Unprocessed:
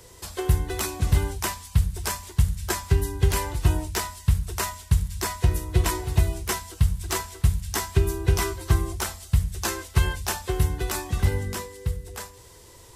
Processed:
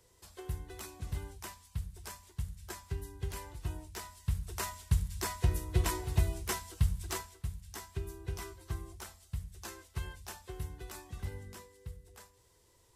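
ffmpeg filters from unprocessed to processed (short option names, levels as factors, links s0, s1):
-af "volume=0.398,afade=t=in:st=3.91:d=0.94:silence=0.334965,afade=t=out:st=6.99:d=0.41:silence=0.316228"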